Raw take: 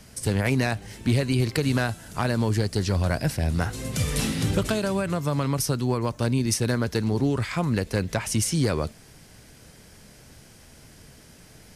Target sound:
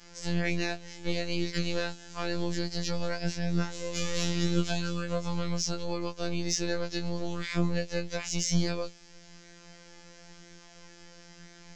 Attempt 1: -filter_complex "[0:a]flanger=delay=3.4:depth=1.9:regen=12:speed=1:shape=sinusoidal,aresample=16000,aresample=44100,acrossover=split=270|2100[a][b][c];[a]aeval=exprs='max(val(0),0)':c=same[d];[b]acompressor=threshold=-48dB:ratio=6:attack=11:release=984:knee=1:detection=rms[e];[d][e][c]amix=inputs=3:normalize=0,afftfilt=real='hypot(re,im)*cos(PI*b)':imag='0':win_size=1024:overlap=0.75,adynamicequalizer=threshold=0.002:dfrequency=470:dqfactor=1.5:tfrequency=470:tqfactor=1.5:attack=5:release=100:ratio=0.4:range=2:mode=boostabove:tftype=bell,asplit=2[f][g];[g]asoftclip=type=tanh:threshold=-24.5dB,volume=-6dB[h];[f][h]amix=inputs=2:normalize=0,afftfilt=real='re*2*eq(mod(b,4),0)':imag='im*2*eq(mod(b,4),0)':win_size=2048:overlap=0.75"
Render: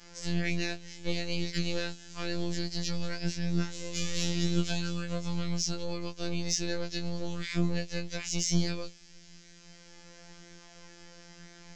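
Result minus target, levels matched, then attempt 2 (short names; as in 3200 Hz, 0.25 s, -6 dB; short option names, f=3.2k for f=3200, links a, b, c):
compressor: peak gain reduction +9.5 dB
-filter_complex "[0:a]flanger=delay=3.4:depth=1.9:regen=12:speed=1:shape=sinusoidal,aresample=16000,aresample=44100,acrossover=split=270|2100[a][b][c];[a]aeval=exprs='max(val(0),0)':c=same[d];[b]acompressor=threshold=-36.5dB:ratio=6:attack=11:release=984:knee=1:detection=rms[e];[d][e][c]amix=inputs=3:normalize=0,afftfilt=real='hypot(re,im)*cos(PI*b)':imag='0':win_size=1024:overlap=0.75,adynamicequalizer=threshold=0.002:dfrequency=470:dqfactor=1.5:tfrequency=470:tqfactor=1.5:attack=5:release=100:ratio=0.4:range=2:mode=boostabove:tftype=bell,asplit=2[f][g];[g]asoftclip=type=tanh:threshold=-24.5dB,volume=-6dB[h];[f][h]amix=inputs=2:normalize=0,afftfilt=real='re*2*eq(mod(b,4),0)':imag='im*2*eq(mod(b,4),0)':win_size=2048:overlap=0.75"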